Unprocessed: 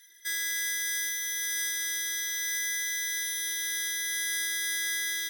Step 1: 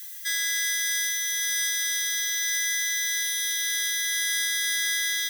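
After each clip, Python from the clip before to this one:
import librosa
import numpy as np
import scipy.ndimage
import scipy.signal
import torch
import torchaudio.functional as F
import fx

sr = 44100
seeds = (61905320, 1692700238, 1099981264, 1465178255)

y = fx.peak_eq(x, sr, hz=3800.0, db=7.0, octaves=2.4)
y = fx.dmg_noise_colour(y, sr, seeds[0], colour='violet', level_db=-40.0)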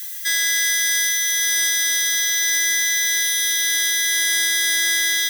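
y = 10.0 ** (-20.0 / 20.0) * np.tanh(x / 10.0 ** (-20.0 / 20.0))
y = y * librosa.db_to_amplitude(8.5)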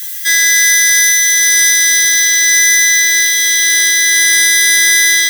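y = fx.room_early_taps(x, sr, ms=(15, 30), db=(-10.0, -8.0))
y = y * librosa.db_to_amplitude(7.0)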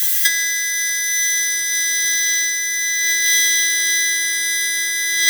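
y = fx.over_compress(x, sr, threshold_db=-15.0, ratio=-0.5)
y = y * librosa.db_to_amplitude(-1.0)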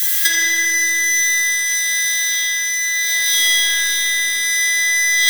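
y = fx.echo_filtered(x, sr, ms=81, feedback_pct=80, hz=4000.0, wet_db=-5)
y = fx.rev_spring(y, sr, rt60_s=2.1, pass_ms=(42, 54), chirp_ms=25, drr_db=-3.0)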